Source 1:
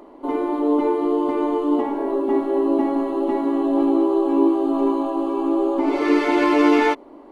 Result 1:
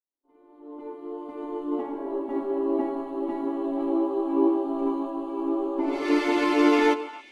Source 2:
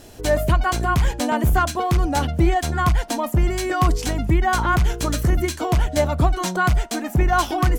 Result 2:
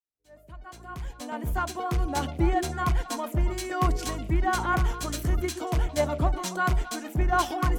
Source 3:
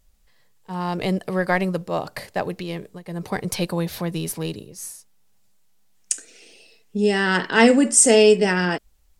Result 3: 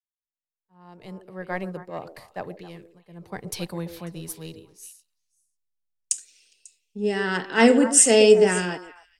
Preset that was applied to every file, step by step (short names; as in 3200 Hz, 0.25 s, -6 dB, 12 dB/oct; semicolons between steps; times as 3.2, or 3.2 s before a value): opening faded in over 2.08 s; delay with a stepping band-pass 0.136 s, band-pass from 400 Hz, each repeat 1.4 oct, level -5 dB; three-band expander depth 70%; gain -7 dB